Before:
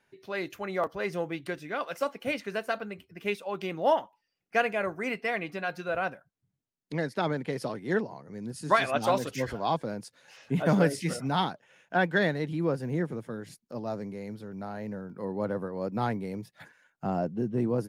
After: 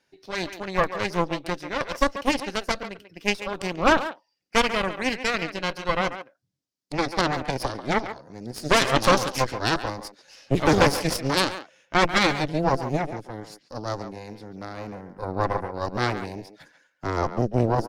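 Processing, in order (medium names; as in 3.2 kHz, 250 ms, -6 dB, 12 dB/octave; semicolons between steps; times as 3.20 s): peaking EQ 5.1 kHz +12 dB 0.97 oct; small resonant body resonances 300/530 Hz, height 7 dB; Chebyshev shaper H 3 -22 dB, 6 -7 dB, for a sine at -7.5 dBFS; speakerphone echo 140 ms, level -10 dB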